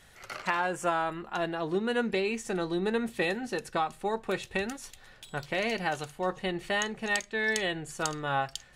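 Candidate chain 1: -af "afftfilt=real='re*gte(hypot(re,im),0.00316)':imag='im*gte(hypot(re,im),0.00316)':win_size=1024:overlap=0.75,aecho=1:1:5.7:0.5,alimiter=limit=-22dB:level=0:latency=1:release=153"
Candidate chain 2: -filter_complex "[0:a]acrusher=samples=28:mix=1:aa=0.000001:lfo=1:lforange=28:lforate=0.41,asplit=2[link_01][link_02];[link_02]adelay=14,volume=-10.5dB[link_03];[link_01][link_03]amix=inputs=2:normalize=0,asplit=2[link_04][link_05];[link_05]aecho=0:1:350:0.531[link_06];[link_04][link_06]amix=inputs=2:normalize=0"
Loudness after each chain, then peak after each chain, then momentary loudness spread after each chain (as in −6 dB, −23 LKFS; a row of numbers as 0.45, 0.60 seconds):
−33.5, −30.5 LKFS; −22.0, −15.5 dBFS; 6, 6 LU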